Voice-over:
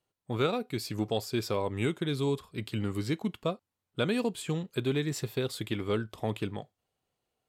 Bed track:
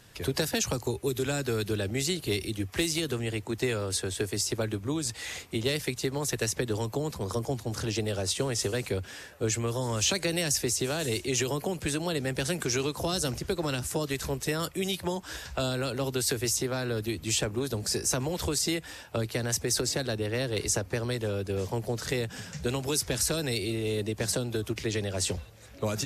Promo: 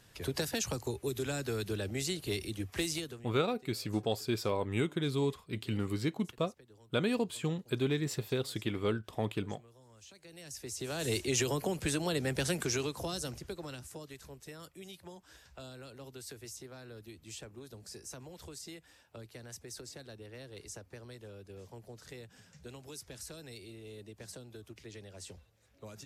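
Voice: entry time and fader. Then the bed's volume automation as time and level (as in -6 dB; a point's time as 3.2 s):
2.95 s, -2.0 dB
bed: 2.95 s -6 dB
3.44 s -29.5 dB
10.12 s -29.5 dB
11.1 s -2.5 dB
12.53 s -2.5 dB
14.23 s -18.5 dB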